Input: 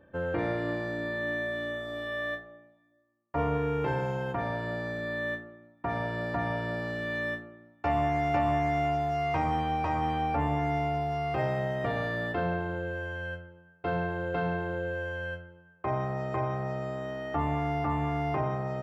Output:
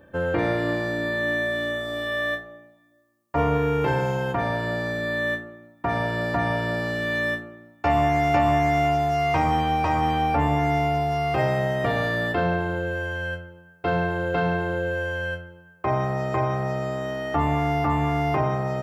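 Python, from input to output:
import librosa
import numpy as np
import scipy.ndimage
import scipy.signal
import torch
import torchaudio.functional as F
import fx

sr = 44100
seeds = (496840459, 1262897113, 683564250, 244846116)

y = fx.high_shelf(x, sr, hz=4700.0, db=9.5)
y = y * librosa.db_to_amplitude(6.5)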